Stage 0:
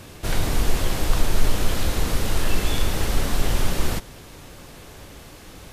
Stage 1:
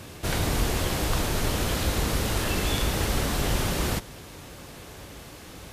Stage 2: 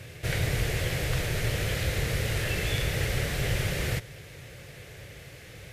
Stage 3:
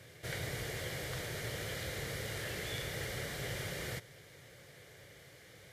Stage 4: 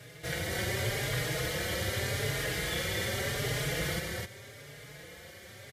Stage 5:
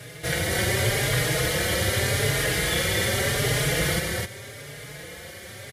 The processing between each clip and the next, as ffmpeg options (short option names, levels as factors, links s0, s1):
-af "highpass=45"
-af "equalizer=f=125:t=o:w=1:g=12,equalizer=f=250:t=o:w=1:g=-10,equalizer=f=500:t=o:w=1:g=8,equalizer=f=1000:t=o:w=1:g=-10,equalizer=f=2000:t=o:w=1:g=11,volume=0.501"
-af "highpass=f=200:p=1,bandreject=f=2600:w=6.2,volume=0.398"
-filter_complex "[0:a]asplit=2[s0][s1];[s1]aecho=0:1:137|259.5:0.282|0.794[s2];[s0][s2]amix=inputs=2:normalize=0,asplit=2[s3][s4];[s4]adelay=4.4,afreqshift=0.84[s5];[s3][s5]amix=inputs=2:normalize=1,volume=2.66"
-af "equalizer=f=10000:w=3.3:g=5.5,volume=2.66"